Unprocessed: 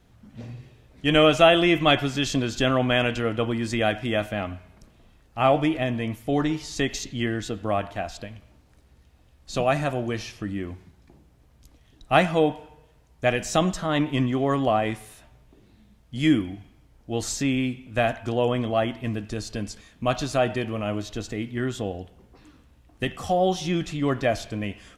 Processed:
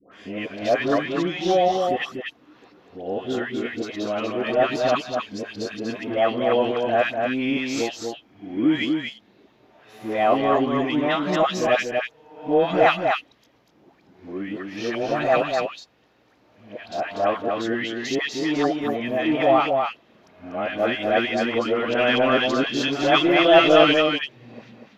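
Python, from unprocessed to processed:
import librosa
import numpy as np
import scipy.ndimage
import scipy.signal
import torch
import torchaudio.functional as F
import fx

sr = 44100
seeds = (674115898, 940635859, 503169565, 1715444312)

p1 = np.flip(x).copy()
p2 = scipy.signal.sosfilt(scipy.signal.butter(2, 300.0, 'highpass', fs=sr, output='sos'), p1)
p3 = 10.0 ** (-19.0 / 20.0) * np.tanh(p2 / 10.0 ** (-19.0 / 20.0))
p4 = p2 + (p3 * librosa.db_to_amplitude(-3.0))
p5 = np.convolve(p4, np.full(5, 1.0 / 5))[:len(p4)]
p6 = fx.dispersion(p5, sr, late='highs', ms=123.0, hz=1000.0)
y = p6 + fx.echo_single(p6, sr, ms=242, db=-4.5, dry=0)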